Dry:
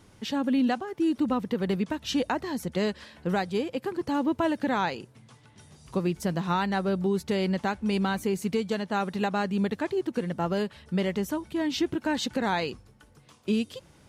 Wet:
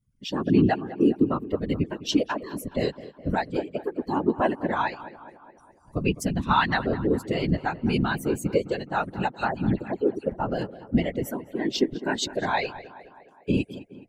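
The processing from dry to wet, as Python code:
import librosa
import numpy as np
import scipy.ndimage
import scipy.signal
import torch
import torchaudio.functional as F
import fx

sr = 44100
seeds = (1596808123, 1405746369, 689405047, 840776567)

y = fx.bin_expand(x, sr, power=2.0)
y = fx.peak_eq(y, sr, hz=3100.0, db=11.0, octaves=1.7, at=(6.04, 6.77))
y = fx.dispersion(y, sr, late='lows', ms=93.0, hz=2500.0, at=(9.31, 10.32))
y = fx.whisperise(y, sr, seeds[0])
y = fx.echo_tape(y, sr, ms=208, feedback_pct=62, wet_db=-15, lp_hz=2400.0, drive_db=8.0, wow_cents=28)
y = y * librosa.db_to_amplitude(6.5)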